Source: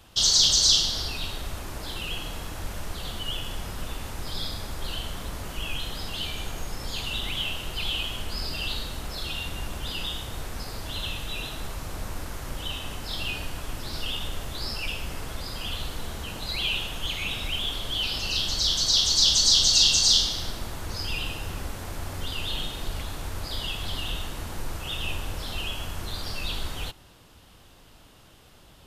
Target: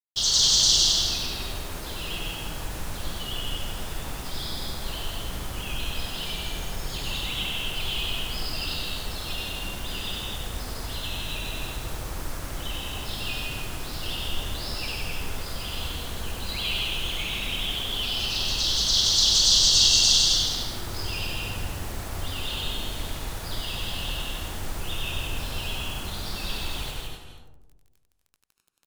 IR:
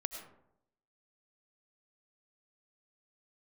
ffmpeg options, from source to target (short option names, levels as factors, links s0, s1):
-filter_complex "[0:a]acrusher=bits=6:mix=0:aa=0.000001,aecho=1:1:163.3|239.1:0.708|0.316,asplit=2[s0][s1];[1:a]atrim=start_sample=2205,asetrate=26019,aresample=44100,adelay=96[s2];[s1][s2]afir=irnorm=-1:irlink=0,volume=0.531[s3];[s0][s3]amix=inputs=2:normalize=0,volume=0.708"